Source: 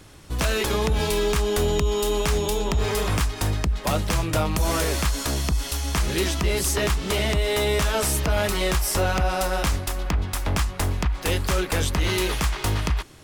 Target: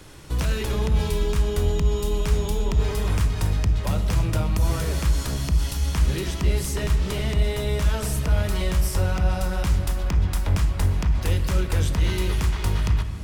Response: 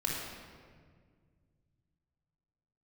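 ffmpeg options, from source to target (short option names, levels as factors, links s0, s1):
-filter_complex "[0:a]acrossover=split=210[s0][s1];[s1]acompressor=threshold=0.01:ratio=2[s2];[s0][s2]amix=inputs=2:normalize=0,asplit=2[s3][s4];[1:a]atrim=start_sample=2205[s5];[s4][s5]afir=irnorm=-1:irlink=0,volume=0.316[s6];[s3][s6]amix=inputs=2:normalize=0"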